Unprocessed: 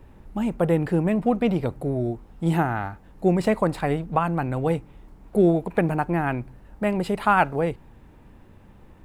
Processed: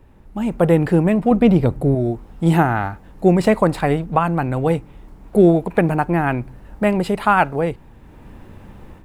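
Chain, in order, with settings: 1.31–1.95 s: bass shelf 380 Hz +7 dB; level rider gain up to 11 dB; trim -1 dB

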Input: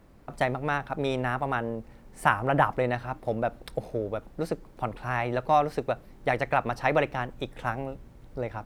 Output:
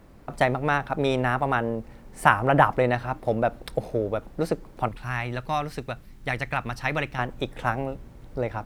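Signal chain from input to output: 4.88–7.19 s: peaking EQ 560 Hz -12 dB 2.2 oct; trim +4.5 dB

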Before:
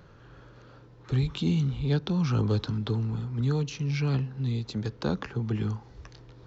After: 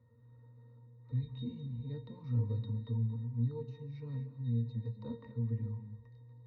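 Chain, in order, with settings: pitch-class resonator A#, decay 0.18 s; gated-style reverb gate 280 ms rising, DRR 10.5 dB; trim -2 dB

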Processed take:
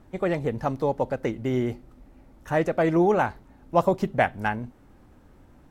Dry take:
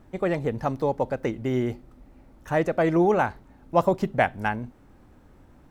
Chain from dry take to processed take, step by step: Vorbis 64 kbps 44.1 kHz

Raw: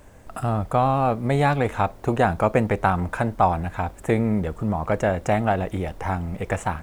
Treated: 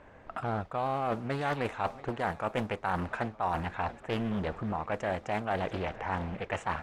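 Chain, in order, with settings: tilt EQ +2.5 dB/octave; on a send: shuffle delay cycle 914 ms, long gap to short 3:1, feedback 47%, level -23 dB; on the sum: level-controlled noise filter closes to 2.1 kHz, open at -16.5 dBFS; reverse; compression 6:1, threshold -28 dBFS, peak gain reduction 13.5 dB; reverse; treble shelf 5.1 kHz -8 dB; loudspeaker Doppler distortion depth 0.76 ms

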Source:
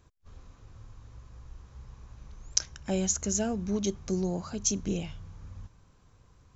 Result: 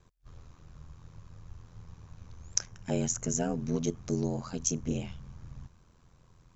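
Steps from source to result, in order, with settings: dynamic bell 4 kHz, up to -8 dB, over -49 dBFS, Q 1.4; ring modulator 42 Hz; trim +2 dB

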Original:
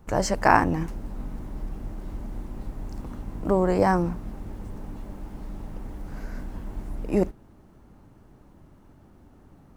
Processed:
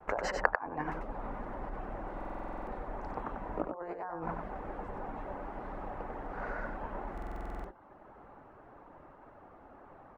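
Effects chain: low-pass 3.1 kHz 6 dB/octave; compressor with a negative ratio -29 dBFS, ratio -0.5; de-hum 93.27 Hz, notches 16; reverb removal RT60 0.65 s; expander -51 dBFS; three-band isolator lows -21 dB, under 490 Hz, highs -22 dB, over 2.2 kHz; on a send: delay 91 ms -5 dB; on the sum: speed mistake 25 fps video run at 24 fps; buffer glitch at 2.16/7.13 s, samples 2048, times 10; trim +8 dB

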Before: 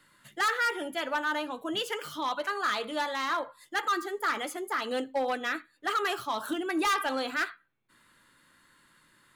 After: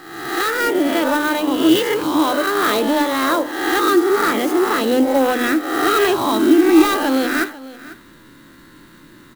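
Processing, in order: reverse spectral sustain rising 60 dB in 0.91 s; small resonant body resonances 310/3900 Hz, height 10 dB, ringing for 20 ms; in parallel at 0 dB: compression, threshold -36 dBFS, peak gain reduction 19.5 dB; on the sum: hum notches 50/100/150/200/250/300 Hz; on a send: delay 495 ms -19.5 dB; on the sum: level rider gain up to 7 dB; bass shelf 360 Hz +11 dB; sampling jitter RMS 0.025 ms; trim -2.5 dB

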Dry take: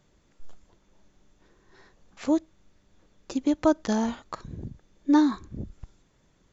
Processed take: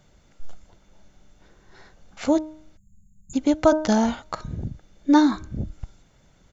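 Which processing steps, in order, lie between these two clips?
comb 1.4 ms, depth 32%; de-hum 310.6 Hz, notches 5; spectral selection erased 2.77–3.34 s, 220–6500 Hz; trim +6 dB

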